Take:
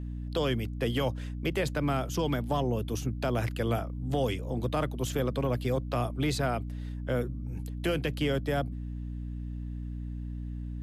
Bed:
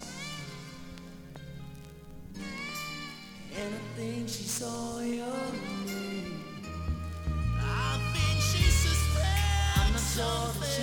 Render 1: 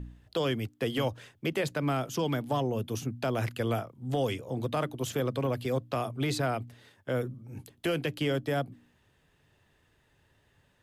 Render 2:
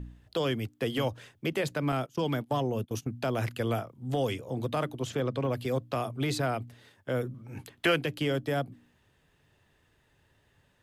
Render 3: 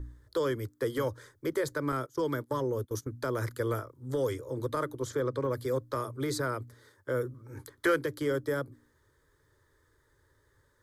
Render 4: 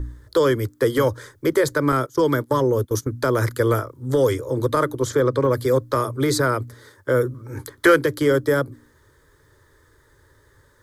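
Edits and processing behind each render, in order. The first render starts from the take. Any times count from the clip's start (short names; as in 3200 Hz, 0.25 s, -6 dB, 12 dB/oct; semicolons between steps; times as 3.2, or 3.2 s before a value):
de-hum 60 Hz, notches 5
1.92–3.13 gate -37 dBFS, range -21 dB; 4.99–5.51 air absorption 55 m; 7.34–7.96 bell 1700 Hz +10.5 dB 2.7 oct
in parallel at -10 dB: soft clip -22 dBFS, distortion -17 dB; on the sum: fixed phaser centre 730 Hz, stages 6
gain +12 dB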